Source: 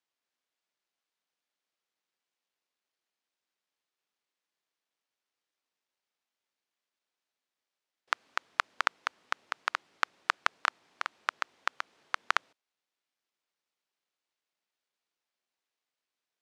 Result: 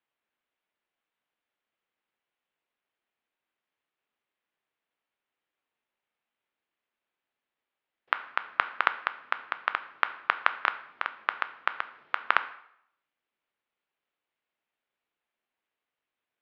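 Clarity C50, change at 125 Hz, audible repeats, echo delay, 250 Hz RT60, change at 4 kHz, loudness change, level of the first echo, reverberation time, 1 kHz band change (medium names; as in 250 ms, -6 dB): 14.5 dB, no reading, no echo, no echo, 0.70 s, -0.5 dB, +3.5 dB, no echo, 0.70 s, +4.0 dB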